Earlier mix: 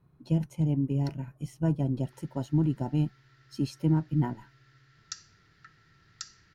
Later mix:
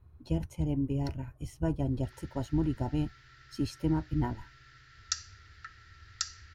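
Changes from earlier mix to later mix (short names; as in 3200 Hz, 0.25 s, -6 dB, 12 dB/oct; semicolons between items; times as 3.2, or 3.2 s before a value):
speech: add resonant low shelf 110 Hz +10.5 dB, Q 3; background +7.0 dB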